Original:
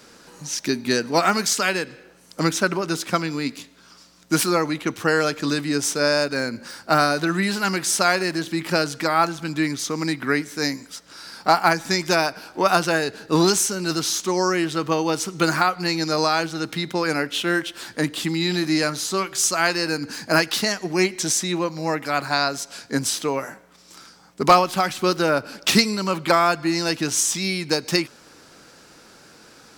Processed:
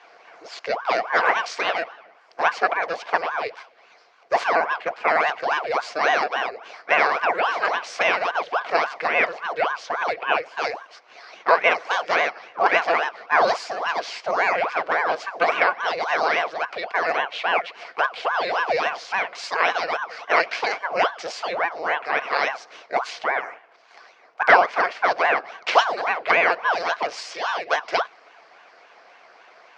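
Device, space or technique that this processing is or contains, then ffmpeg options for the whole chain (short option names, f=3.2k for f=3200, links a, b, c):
voice changer toy: -af "aeval=exprs='val(0)*sin(2*PI*760*n/s+760*0.8/3.6*sin(2*PI*3.6*n/s))':c=same,highpass=470,equalizer=f=470:t=q:w=4:g=6,equalizer=f=700:t=q:w=4:g=10,equalizer=f=1.1k:t=q:w=4:g=4,equalizer=f=1.5k:t=q:w=4:g=4,equalizer=f=2.2k:t=q:w=4:g=6,equalizer=f=3.7k:t=q:w=4:g=-6,lowpass=f=4.4k:w=0.5412,lowpass=f=4.4k:w=1.3066,volume=-1dB"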